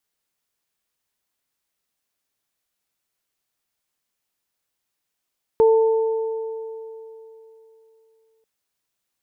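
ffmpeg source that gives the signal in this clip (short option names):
-f lavfi -i "aevalsrc='0.299*pow(10,-3*t/3.28)*sin(2*PI*446*t)+0.075*pow(10,-3*t/2.8)*sin(2*PI*892*t)':d=2.84:s=44100"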